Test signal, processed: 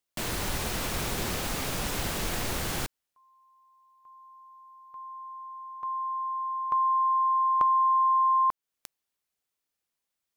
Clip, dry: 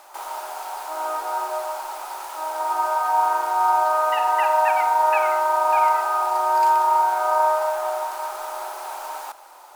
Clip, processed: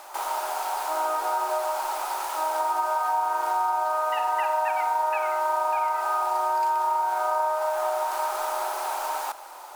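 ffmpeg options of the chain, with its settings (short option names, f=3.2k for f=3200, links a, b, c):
-af "acompressor=threshold=-26dB:ratio=6,volume=3.5dB"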